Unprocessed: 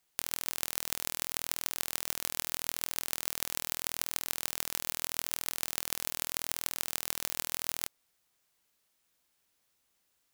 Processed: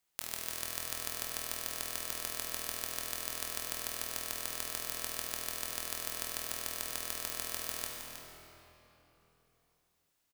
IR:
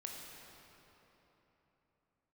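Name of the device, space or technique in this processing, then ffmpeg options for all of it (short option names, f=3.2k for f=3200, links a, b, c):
cave: -filter_complex "[0:a]aecho=1:1:317:0.299[a];[1:a]atrim=start_sample=2205[b];[a][b]afir=irnorm=-1:irlink=0"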